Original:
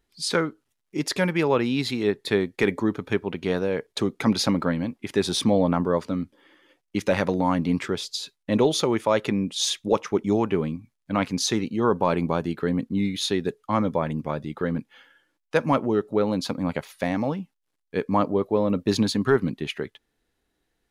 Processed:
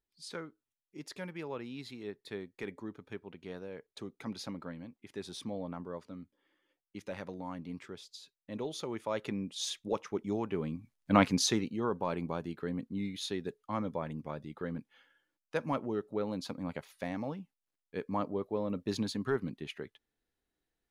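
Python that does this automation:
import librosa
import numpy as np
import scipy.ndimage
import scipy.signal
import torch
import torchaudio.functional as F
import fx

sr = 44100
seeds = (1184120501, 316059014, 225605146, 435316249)

y = fx.gain(x, sr, db=fx.line((8.54, -19.0), (9.29, -12.0), (10.5, -12.0), (11.16, 0.5), (11.9, -12.0)))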